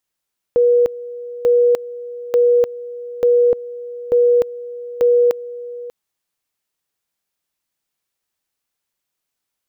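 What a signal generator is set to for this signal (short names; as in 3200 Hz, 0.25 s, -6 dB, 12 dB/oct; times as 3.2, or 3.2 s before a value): two-level tone 483 Hz -9.5 dBFS, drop 17.5 dB, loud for 0.30 s, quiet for 0.59 s, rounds 6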